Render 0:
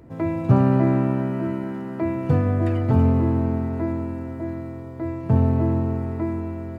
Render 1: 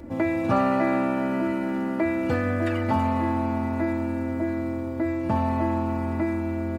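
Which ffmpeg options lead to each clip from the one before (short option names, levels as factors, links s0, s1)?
-filter_complex "[0:a]aecho=1:1:3.5:0.85,acrossover=split=670[s0][s1];[s0]acompressor=threshold=0.0355:ratio=6[s2];[s2][s1]amix=inputs=2:normalize=0,volume=1.68"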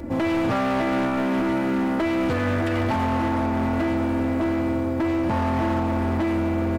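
-af "alimiter=limit=0.133:level=0:latency=1:release=140,asoftclip=type=hard:threshold=0.0447,volume=2.24"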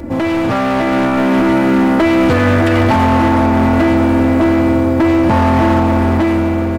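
-af "dynaudnorm=f=440:g=5:m=1.68,volume=2.24"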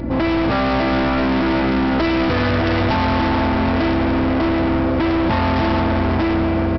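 -af "aresample=11025,asoftclip=type=hard:threshold=0.15,aresample=44100,aeval=exprs='val(0)+0.0447*(sin(2*PI*60*n/s)+sin(2*PI*2*60*n/s)/2+sin(2*PI*3*60*n/s)/3+sin(2*PI*4*60*n/s)/4+sin(2*PI*5*60*n/s)/5)':c=same"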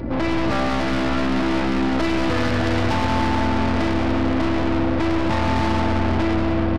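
-af "aeval=exprs='(tanh(7.94*val(0)+0.55)-tanh(0.55))/7.94':c=same,aecho=1:1:183:0.398"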